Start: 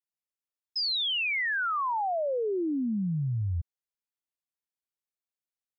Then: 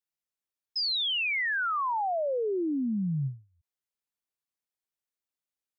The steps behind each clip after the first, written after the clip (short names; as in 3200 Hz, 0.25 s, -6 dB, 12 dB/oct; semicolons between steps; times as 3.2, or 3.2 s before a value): ending taper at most 180 dB/s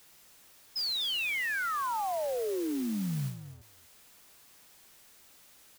zero-crossing step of -45.5 dBFS; echo 0.247 s -13.5 dB; modulation noise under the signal 15 dB; gain -4 dB